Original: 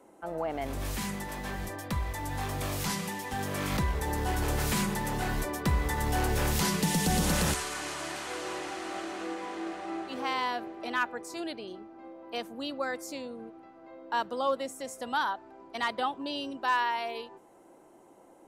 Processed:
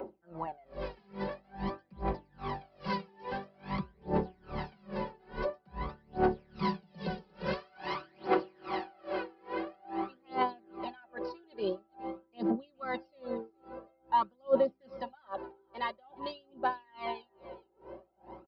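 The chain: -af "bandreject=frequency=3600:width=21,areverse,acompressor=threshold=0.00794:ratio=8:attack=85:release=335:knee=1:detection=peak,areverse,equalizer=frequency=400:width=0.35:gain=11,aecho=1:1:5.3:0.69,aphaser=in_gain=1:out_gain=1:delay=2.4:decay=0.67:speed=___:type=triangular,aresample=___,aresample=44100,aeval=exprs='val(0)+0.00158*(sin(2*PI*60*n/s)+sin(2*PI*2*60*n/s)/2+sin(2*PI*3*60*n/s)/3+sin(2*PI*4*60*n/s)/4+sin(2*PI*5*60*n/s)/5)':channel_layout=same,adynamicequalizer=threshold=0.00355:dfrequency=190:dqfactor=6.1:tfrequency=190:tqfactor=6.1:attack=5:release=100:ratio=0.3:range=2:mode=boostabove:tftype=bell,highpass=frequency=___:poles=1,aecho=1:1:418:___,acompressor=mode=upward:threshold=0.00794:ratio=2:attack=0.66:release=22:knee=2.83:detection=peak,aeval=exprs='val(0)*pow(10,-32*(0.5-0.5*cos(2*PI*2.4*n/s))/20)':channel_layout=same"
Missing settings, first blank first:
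0.48, 11025, 75, 0.1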